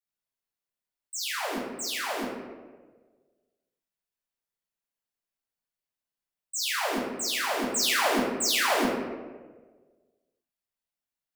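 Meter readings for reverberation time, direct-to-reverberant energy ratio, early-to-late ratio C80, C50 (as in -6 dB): 1.4 s, -10.5 dB, 2.5 dB, 0.0 dB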